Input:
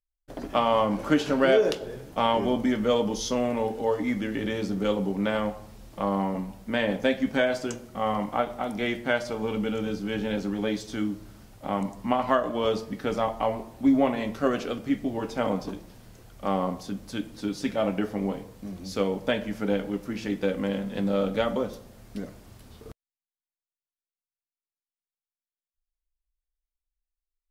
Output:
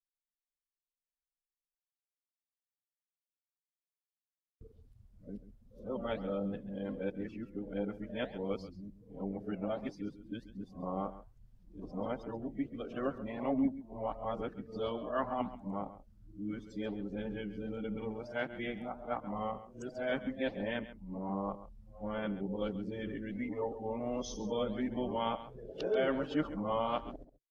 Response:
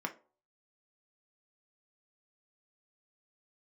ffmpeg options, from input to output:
-af "areverse,lowshelf=f=69:g=7,afftdn=nr=20:nf=-35,flanger=delay=0.3:depth=9:regen=-83:speed=1.4:shape=sinusoidal,aecho=1:1:135:0.188,volume=-6.5dB"

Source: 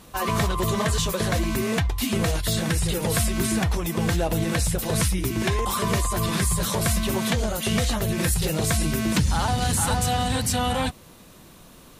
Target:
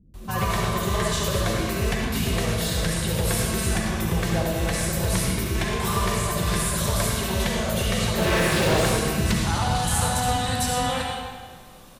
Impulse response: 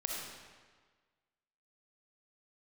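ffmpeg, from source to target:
-filter_complex "[0:a]acrossover=split=280[a][b];[b]adelay=140[c];[a][c]amix=inputs=2:normalize=0,asettb=1/sr,asplit=3[d][e][f];[d]atrim=end=8.184[g];[e]atrim=start=8.18:end=8.85,asetpts=PTS-STARTPTS,afade=t=in:d=0.004:c=qsin,afade=t=out:st=0.666:d=0.004:c=qsin,asplit=2[h][i];[i]highpass=f=720:p=1,volume=33dB,asoftclip=type=tanh:threshold=-10dB[j];[h][j]amix=inputs=2:normalize=0,lowpass=f=1.5k:p=1,volume=-6dB[k];[f]atrim=start=8.846[l];[g][k]acrossfade=d=0.004:c1=hsin:c2=qsin[m];[m][l]acrossfade=d=0.004:c1=qsin:c2=hsin[n];[1:a]atrim=start_sample=2205,asetrate=40131,aresample=44100[o];[n][o]afir=irnorm=-1:irlink=0,volume=-2.5dB"

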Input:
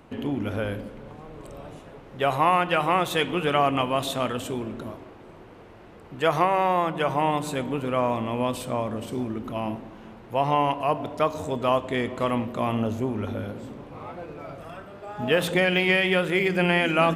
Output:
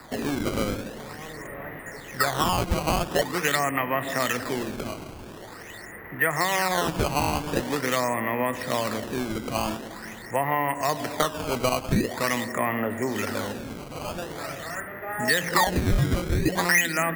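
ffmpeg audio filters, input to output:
-filter_complex "[0:a]lowpass=f=1.9k:t=q:w=15,acrossover=split=110|270[a][b][c];[a]acompressor=threshold=-52dB:ratio=4[d];[b]acompressor=threshold=-38dB:ratio=4[e];[c]acompressor=threshold=-24dB:ratio=4[f];[d][e][f]amix=inputs=3:normalize=0,acrusher=samples=14:mix=1:aa=0.000001:lfo=1:lforange=22.4:lforate=0.45,volume=2dB"

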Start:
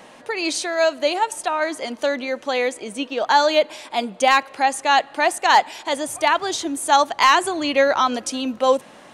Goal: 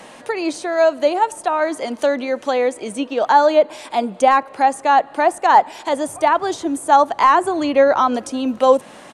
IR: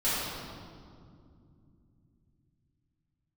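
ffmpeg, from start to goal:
-filter_complex "[0:a]equalizer=f=8.9k:t=o:w=0.53:g=4,acrossover=split=610|1400[a][b][c];[c]acompressor=threshold=-37dB:ratio=6[d];[a][b][d]amix=inputs=3:normalize=0,aresample=32000,aresample=44100,volume=4.5dB"

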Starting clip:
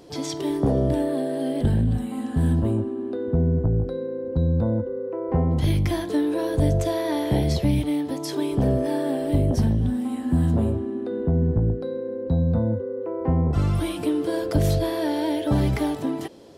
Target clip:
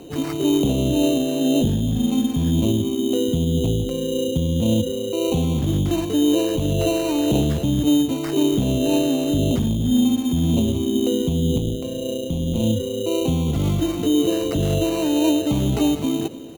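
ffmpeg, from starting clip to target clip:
-filter_complex "[0:a]equalizer=f=250:t=o:w=1:g=4,equalizer=f=2k:t=o:w=1:g=-11,equalizer=f=4k:t=o:w=1:g=-4,equalizer=f=8k:t=o:w=1:g=-6,alimiter=limit=-17.5dB:level=0:latency=1:release=38,acrossover=split=150[a][b];[a]acompressor=threshold=-31dB:ratio=6[c];[c][b]amix=inputs=2:normalize=0,aphaser=in_gain=1:out_gain=1:delay=1:decay=0.31:speed=1.9:type=triangular,acrusher=samples=13:mix=1:aa=0.000001,asettb=1/sr,asplit=3[d][e][f];[d]atrim=end=11.584[g];[e]atrim=start=11.58:end=12.64,asetpts=PTS-STARTPTS,afade=t=in:d=0.004:c=qsin,afade=t=out:st=1.056:d=0.004:c=qsin,tremolo=f=130:d=0.621[h];[f]atrim=start=12.636[i];[g][h]acrossfade=d=0.004:c1=hsin:c2=qsin[j];[j][i]acrossfade=d=0.004:c1=qsin:c2=hsin,asplit=2[k][l];[l]aecho=0:1:298:0.141[m];[k][m]amix=inputs=2:normalize=0,volume=4dB"

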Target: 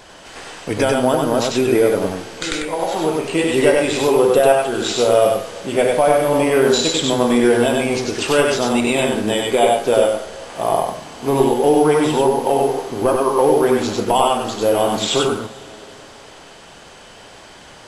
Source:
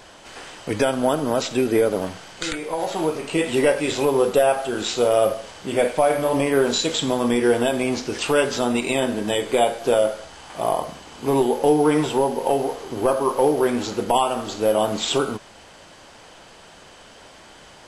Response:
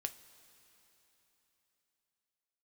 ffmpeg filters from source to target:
-filter_complex "[0:a]asplit=2[a][b];[1:a]atrim=start_sample=2205,adelay=96[c];[b][c]afir=irnorm=-1:irlink=0,volume=-0.5dB[d];[a][d]amix=inputs=2:normalize=0,volume=2.5dB"

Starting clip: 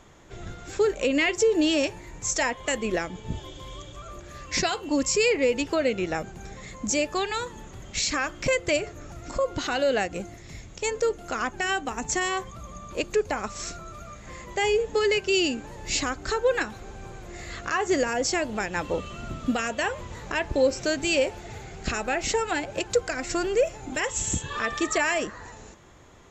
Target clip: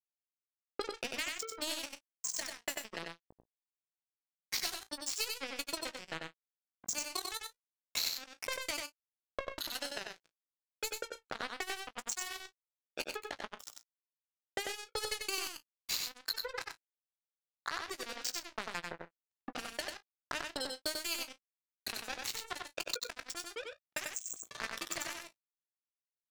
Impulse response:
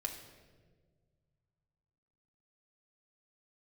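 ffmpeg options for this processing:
-filter_complex "[0:a]highpass=f=680:p=1,afftfilt=real='re*gte(hypot(re,im),0.0398)':imag='im*gte(hypot(re,im),0.0398)':win_size=1024:overlap=0.75,equalizer=f=4.2k:t=o:w=0.39:g=14.5,acompressor=threshold=-37dB:ratio=4,acrusher=bits=4:mix=0:aa=0.5,asplit=2[a][b];[b]adelay=18,volume=-13dB[c];[a][c]amix=inputs=2:normalize=0,aecho=1:1:82|94|129:0.119|0.631|0.126,volume=1dB"

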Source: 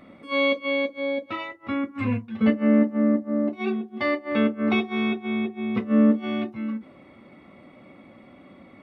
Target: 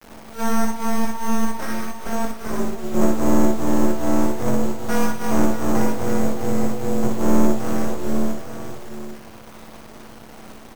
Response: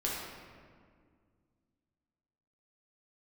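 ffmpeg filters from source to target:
-filter_complex "[0:a]lowpass=f=1.4k:w=0.5412,lowpass=f=1.4k:w=1.3066,lowshelf=f=82:g=-10.5,bandreject=f=50:t=h:w=6,bandreject=f=100:t=h:w=6,bandreject=f=150:t=h:w=6,bandreject=f=200:t=h:w=6,bandreject=f=250:t=h:w=6,aecho=1:1:5.1:0.75,adynamicequalizer=threshold=0.0316:dfrequency=200:dqfactor=2.8:tfrequency=200:tqfactor=2.8:attack=5:release=100:ratio=0.375:range=1.5:mode=cutabove:tftype=bell,asplit=2[a][b];[b]alimiter=limit=-18.5dB:level=0:latency=1,volume=1.5dB[c];[a][c]amix=inputs=2:normalize=0,acrusher=samples=5:mix=1:aa=0.000001,asetrate=36162,aresample=44100,aeval=exprs='val(0)*sin(2*PI*110*n/s)':c=same,aeval=exprs='abs(val(0))':c=same,acrusher=bits=6:mix=0:aa=0.000001,aecho=1:1:60|119|616|864:0.631|0.224|0.237|0.376"

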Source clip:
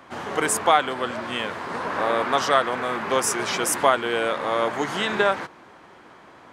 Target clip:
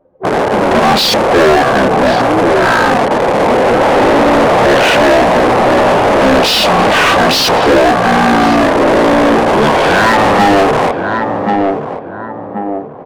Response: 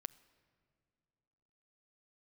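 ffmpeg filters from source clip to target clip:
-filter_complex "[0:a]anlmdn=10,asplit=2[a][b];[b]acrusher=bits=4:mix=0:aa=0.000001,volume=-9dB[c];[a][c]amix=inputs=2:normalize=0,asetrate=22050,aresample=44100,asplit=2[d][e];[e]adelay=1080,lowpass=f=940:p=1,volume=-13dB,asplit=2[f][g];[g]adelay=1080,lowpass=f=940:p=1,volume=0.38,asplit=2[h][i];[i]adelay=1080,lowpass=f=940:p=1,volume=0.38,asplit=2[j][k];[k]adelay=1080,lowpass=f=940:p=1,volume=0.38[l];[d][f][h][j][l]amix=inputs=5:normalize=0,asplit=2[m][n];[n]highpass=f=720:p=1,volume=35dB,asoftclip=type=tanh:threshold=-1dB[o];[m][o]amix=inputs=2:normalize=0,lowpass=f=3.1k:p=1,volume=-6dB"

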